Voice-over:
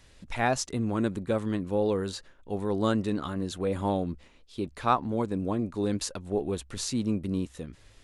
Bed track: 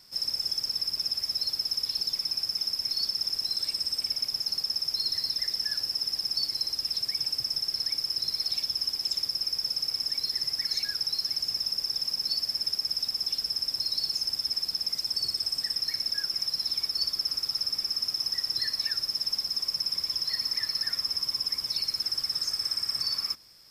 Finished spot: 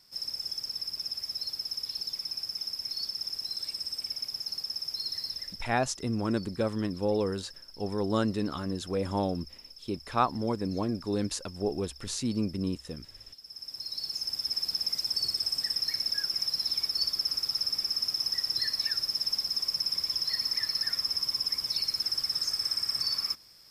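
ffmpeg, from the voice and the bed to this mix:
-filter_complex "[0:a]adelay=5300,volume=0.841[s0];[1:a]volume=5.01,afade=t=out:st=5.26:d=0.41:silence=0.188365,afade=t=in:st=13.41:d=1.32:silence=0.105925[s1];[s0][s1]amix=inputs=2:normalize=0"

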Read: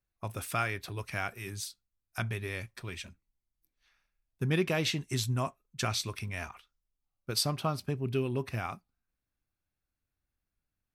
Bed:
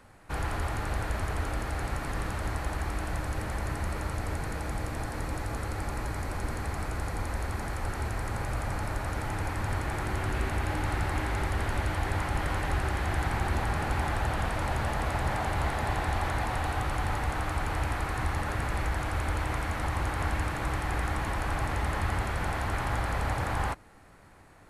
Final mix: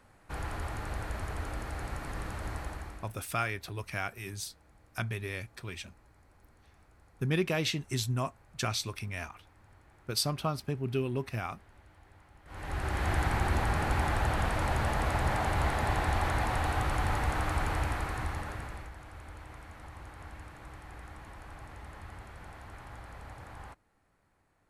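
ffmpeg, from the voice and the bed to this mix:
-filter_complex "[0:a]adelay=2800,volume=0.944[s0];[1:a]volume=14.1,afade=t=out:st=2.59:d=0.56:silence=0.0707946,afade=t=in:st=12.45:d=0.64:silence=0.0375837,afade=t=out:st=17.62:d=1.3:silence=0.141254[s1];[s0][s1]amix=inputs=2:normalize=0"

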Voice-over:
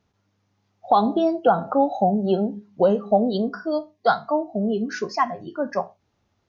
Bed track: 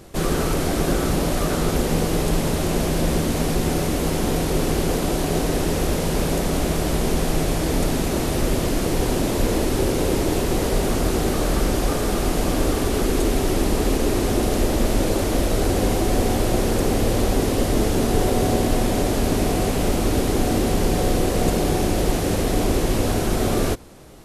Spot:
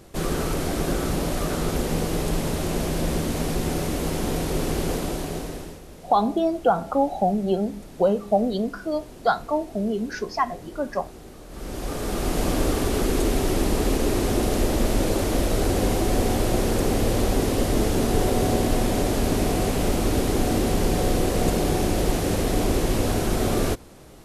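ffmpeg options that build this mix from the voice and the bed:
-filter_complex "[0:a]adelay=5200,volume=0.794[s0];[1:a]volume=6.31,afade=t=out:st=4.91:d=0.9:silence=0.125893,afade=t=in:st=11.49:d=0.95:silence=0.1[s1];[s0][s1]amix=inputs=2:normalize=0"

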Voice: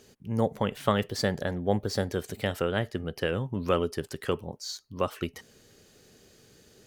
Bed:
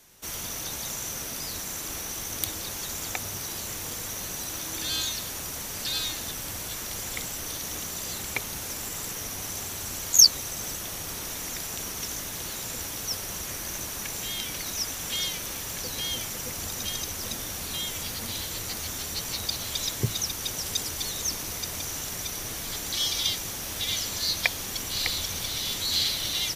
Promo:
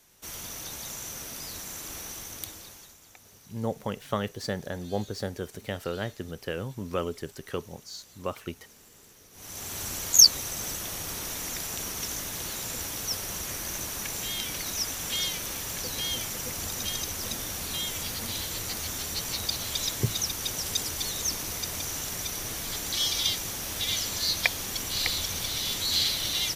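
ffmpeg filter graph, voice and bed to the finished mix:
-filter_complex "[0:a]adelay=3250,volume=0.596[s0];[1:a]volume=6.68,afade=t=out:st=2.07:d=0.9:silence=0.149624,afade=t=in:st=9.32:d=0.48:silence=0.0891251[s1];[s0][s1]amix=inputs=2:normalize=0"

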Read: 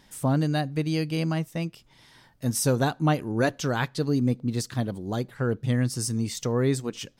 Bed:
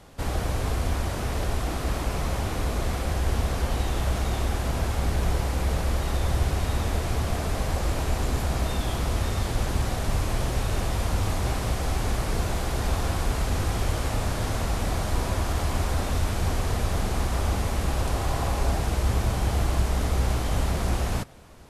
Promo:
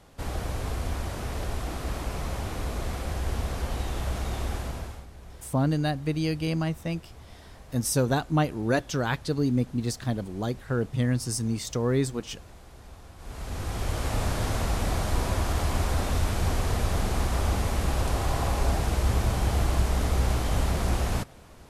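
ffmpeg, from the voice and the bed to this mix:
-filter_complex "[0:a]adelay=5300,volume=0.891[s0];[1:a]volume=6.68,afade=t=out:st=4.55:d=0.51:silence=0.141254,afade=t=in:st=13.17:d=1.05:silence=0.0891251[s1];[s0][s1]amix=inputs=2:normalize=0"

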